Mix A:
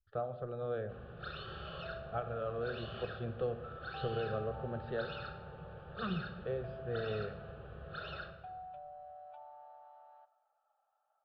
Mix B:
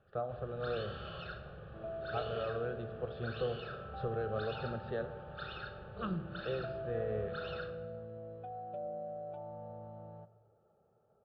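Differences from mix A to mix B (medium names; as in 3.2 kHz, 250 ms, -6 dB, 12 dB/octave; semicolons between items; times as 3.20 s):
first sound: entry -0.60 s; second sound: remove steep high-pass 710 Hz 48 dB/octave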